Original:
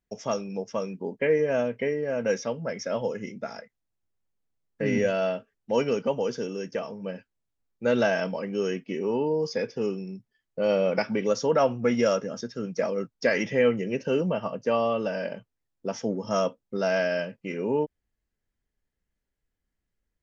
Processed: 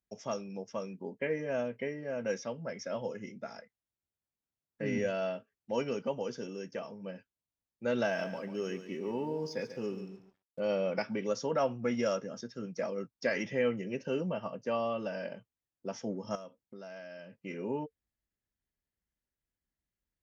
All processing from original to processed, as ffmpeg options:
-filter_complex "[0:a]asettb=1/sr,asplit=3[s0][s1][s2];[s0]atrim=end=8.044[s3];[s1]atrim=start=8.04:end=10.6,asetpts=PTS-STARTPTS,afade=t=in:d=0.004:c=qsin,afade=t=out:st=2.556:d=0.004:c=qsin,aecho=1:1:141|282|423:0.282|0.0761|0.0205,atrim=end_sample=112896,aeval=exprs='sgn(val(0))*max(abs(val(0))-0.0015,0)':c=same[s4];[s2]atrim=start=10.596[s5];[s3][s4]acrossfade=d=0.004:c1=hsin:c2=qsin[s6];[s6][s5]acrossfade=d=0.004:c1=qsin:c2=hsin,asettb=1/sr,asplit=3[s7][s8][s9];[s7]atrim=end=16.354[s10];[s8]atrim=start=16.35:end=17.41,asetpts=PTS-STARTPTS,afade=t=in:d=0.004:c=qsin,afade=t=out:st=1.056:d=0.004:c=qsin,acompressor=threshold=0.0126:ratio=4:attack=3.2:release=140:knee=1:detection=peak,asoftclip=type=hard:threshold=0.0316[s11];[s9]atrim=start=17.406[s12];[s10][s11]acrossfade=d=0.004:c1=hsin:c2=qsin[s13];[s13][s12]acrossfade=d=0.004:c1=qsin:c2=hsin,highpass=40,bandreject=f=450:w=13,volume=0.422"

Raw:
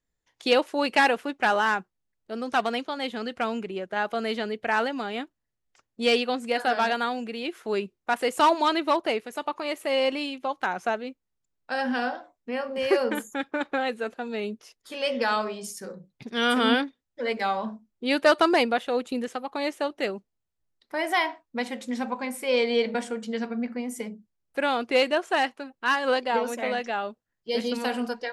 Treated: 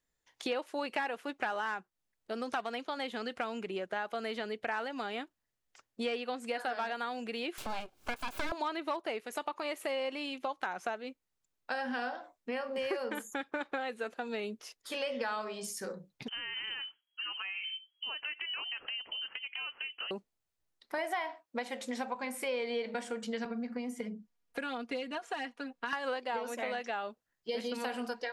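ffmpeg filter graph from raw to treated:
-filter_complex "[0:a]asettb=1/sr,asplit=3[s0][s1][s2];[s0]atrim=end=7.584[s3];[s1]atrim=start=7.58:end=8.52,asetpts=PTS-STARTPTS,afade=t=in:d=0.004:c=qsin,afade=t=out:st=0.936:d=0.004:c=qsin,aeval=exprs='abs(val(0))':c=same,acompressor=mode=upward:threshold=0.0398:ratio=2.5:attack=3.2:release=140:knee=2.83:detection=peak,asuperstop=centerf=1900:order=4:qfactor=7.6[s4];[s2]atrim=start=8.516[s5];[s3][s4]acrossfade=d=0.004:c1=hsin:c2=qsin[s6];[s6][s5]acrossfade=d=0.004:c1=qsin:c2=hsin,asettb=1/sr,asplit=3[s7][s8][s9];[s7]atrim=end=16.284[s10];[s8]atrim=start=16.28:end=20.11,asetpts=PTS-STARTPTS,afade=t=in:d=0.004:c=qsin,afade=t=out:st=3.826:d=0.004:c=qsin,acompressor=threshold=0.0141:ratio=8:attack=3.2:release=140:knee=1:detection=peak,lowpass=f=2800:t=q:w=0.5098,lowpass=f=2800:t=q:w=0.6013,lowpass=f=2800:t=q:w=0.9,lowpass=f=2800:t=q:w=2.563,afreqshift=-3300[s11];[s9]atrim=start=20.106[s12];[s10][s11]acrossfade=d=0.004:c1=hsin:c2=qsin[s13];[s13][s12]acrossfade=d=0.004:c1=qsin:c2=hsin,asettb=1/sr,asplit=3[s14][s15][s16];[s14]atrim=end=20.984[s17];[s15]atrim=start=20.98:end=22.15,asetpts=PTS-STARTPTS,afade=t=in:d=0.004:c=qsin,afade=t=out:st=1.166:d=0.004:c=qsin,highpass=f=230:p=1,equalizer=f=630:t=o:w=0.71:g=4.5[s18];[s16]atrim=start=22.146[s19];[s17][s18]acrossfade=d=0.004:c1=hsin:c2=qsin[s20];[s20][s19]acrossfade=d=0.004:c1=qsin:c2=hsin,asettb=1/sr,asplit=3[s21][s22][s23];[s21]atrim=end=23.454[s24];[s22]atrim=start=23.45:end=25.93,asetpts=PTS-STARTPTS,afade=t=in:d=0.004:c=qsin,afade=t=out:st=2.476:d=0.004:c=qsin,highshelf=f=7200:g=-8.5,aecho=1:1:4.2:0.88,atrim=end_sample=109368,acrossover=split=210|4400[s25][s26][s27];[s25]acompressor=threshold=0.0158:ratio=4[s28];[s26]acompressor=threshold=0.0178:ratio=4[s29];[s27]acompressor=threshold=0.00158:ratio=4[s30];[s28][s29][s30]amix=inputs=3:normalize=0[s31];[s23]atrim=start=25.926[s32];[s24][s31]acrossfade=d=0.004:c1=hsin:c2=qsin[s33];[s33][s32]acrossfade=d=0.004:c1=qsin:c2=hsin,acrossover=split=2600[s34][s35];[s35]acompressor=threshold=0.0126:ratio=4:attack=1:release=60[s36];[s34][s36]amix=inputs=2:normalize=0,lowshelf=f=340:g=-7.5,acompressor=threshold=0.0158:ratio=4,volume=1.26"

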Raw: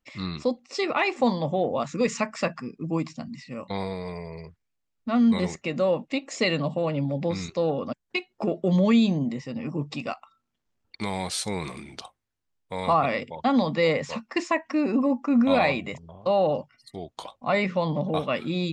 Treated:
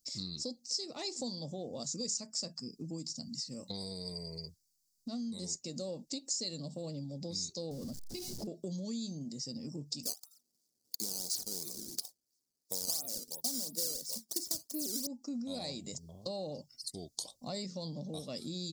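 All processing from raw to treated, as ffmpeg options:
-filter_complex "[0:a]asettb=1/sr,asplit=3[s0][s1][s2];[s0]atrim=end=7.714[s3];[s1]atrim=start=7.71:end=8.47,asetpts=PTS-STARTPTS,afade=t=in:d=0.004:c=qsin,afade=t=out:st=0.756:d=0.004:c=qsin,aeval=exprs='val(0)+0.5*0.0299*sgn(val(0))':c=same,bass=f=250:g=9,treble=f=4000:g=-14,acompressor=threshold=0.0562:ratio=3:attack=3.2:release=140:knee=1:detection=peak[s4];[s2]atrim=start=8.466[s5];[s3][s4]acrossfade=d=0.004:c1=hsin:c2=qsin[s6];[s6][s5]acrossfade=d=0.004:c1=qsin:c2=hsin,asettb=1/sr,asplit=3[s7][s8][s9];[s7]atrim=end=10.034[s10];[s8]atrim=start=10.03:end=15.07,asetpts=PTS-STARTPTS,afade=t=in:d=0.004:c=qsin,afade=t=out:st=5.036:d=0.004:c=qsin,highpass=340,lowshelf=f=460:g=10,acrusher=samples=14:mix=1:aa=0.000001:lfo=1:lforange=22.4:lforate=2.9[s11];[s9]atrim=start=15.066[s12];[s10][s11]acrossfade=d=0.004:c1=hsin:c2=qsin[s13];[s13][s12]acrossfade=d=0.004:c1=qsin:c2=hsin,firequalizer=gain_entry='entry(170,0);entry(1100,-22);entry(2500,-21);entry(4700,15)':delay=0.05:min_phase=1,acompressor=threshold=0.0141:ratio=4,lowshelf=f=260:g=-7.5,volume=1.12"

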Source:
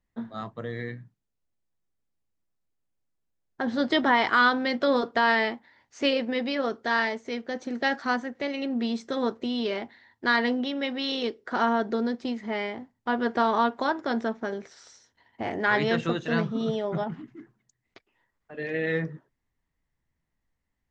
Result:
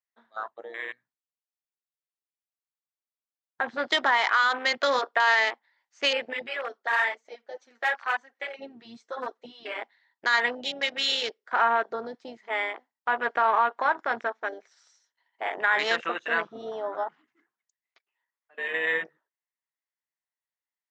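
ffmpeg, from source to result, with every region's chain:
-filter_complex "[0:a]asettb=1/sr,asplit=3[s0][s1][s2];[s0]atrim=end=6.334[s3];[s1]atrim=start=6.33:end=9.79,asetpts=PTS-STARTPTS,afade=t=in:d=0.004:c=qsin,afade=t=out:st=3.456:d=0.004:c=qsin,flanger=delay=2.4:depth=8.1:regen=9:speed=1:shape=triangular,aeval=exprs='0.0794*(abs(mod(val(0)/0.0794+3,4)-2)-1)':c=same[s4];[s2]atrim=start=9.786[s5];[s3][s4]acrossfade=d=0.004:c1=hsin:c2=qsin[s6];[s6][s5]acrossfade=d=0.004:c1=qsin:c2=hsin,highpass=860,afwtdn=0.0126,alimiter=limit=0.112:level=0:latency=1:release=43,volume=2.11"

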